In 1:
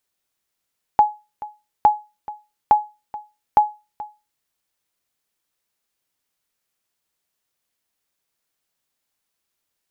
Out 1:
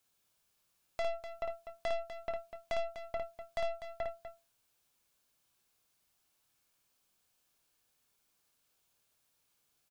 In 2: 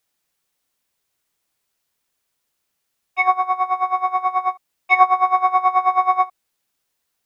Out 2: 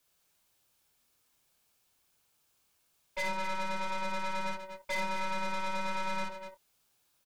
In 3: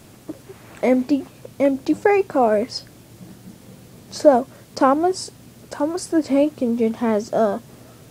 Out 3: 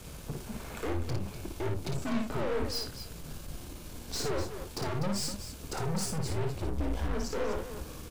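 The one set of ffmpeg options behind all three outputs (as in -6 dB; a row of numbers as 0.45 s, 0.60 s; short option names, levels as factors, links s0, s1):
-filter_complex "[0:a]bandreject=f=2100:w=9.8,afreqshift=-170,asplit=2[s0][s1];[s1]acompressor=threshold=0.0501:ratio=6,volume=1[s2];[s0][s2]amix=inputs=2:normalize=0,alimiter=limit=0.282:level=0:latency=1:release=86,aeval=exprs='(tanh(25.1*val(0)+0.5)-tanh(0.5))/25.1':c=same,asplit=2[s3][s4];[s4]adelay=26,volume=0.251[s5];[s3][s5]amix=inputs=2:normalize=0,asplit=2[s6][s7];[s7]aecho=0:1:55.39|247.8:0.631|0.316[s8];[s6][s8]amix=inputs=2:normalize=0,volume=0.631"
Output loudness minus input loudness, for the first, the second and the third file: -18.5 LU, -17.5 LU, -15.5 LU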